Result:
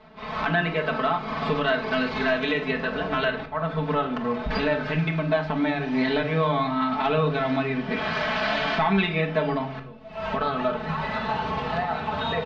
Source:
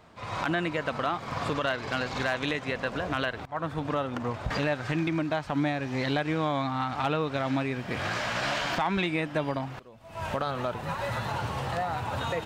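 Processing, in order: LPF 4600 Hz 24 dB/oct; comb 4.6 ms, depth 82%; reverb RT60 0.55 s, pre-delay 5 ms, DRR 3.5 dB

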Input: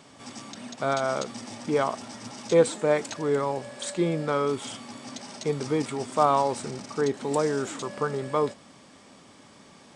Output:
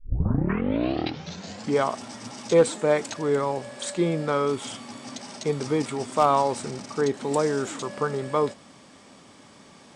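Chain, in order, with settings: tape start at the beginning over 1.80 s; hard clip -11 dBFS, distortion -30 dB; gain +1.5 dB

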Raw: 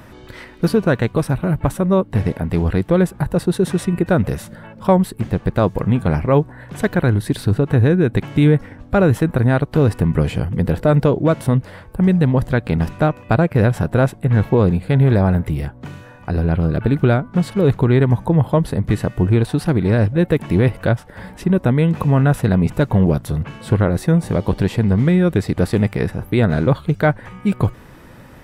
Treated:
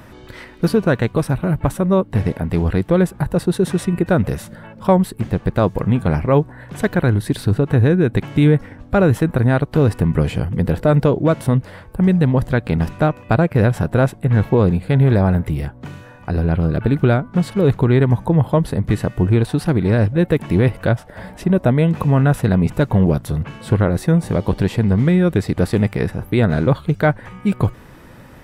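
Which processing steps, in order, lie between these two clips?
20.94–21.87 bell 650 Hz +9 dB 0.27 oct

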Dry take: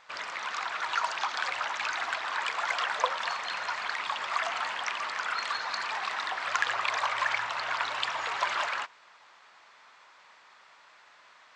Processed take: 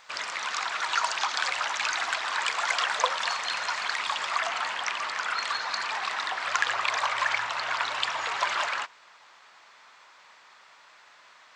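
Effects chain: high shelf 4600 Hz +11.5 dB, from 4.31 s +5 dB; gain +1.5 dB

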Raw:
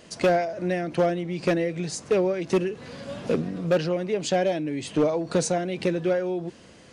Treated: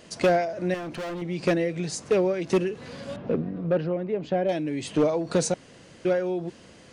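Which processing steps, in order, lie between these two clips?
0.74–1.22 hard clip -31 dBFS, distortion -13 dB; 3.16–4.49 tape spacing loss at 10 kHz 39 dB; 5.54–6.05 room tone

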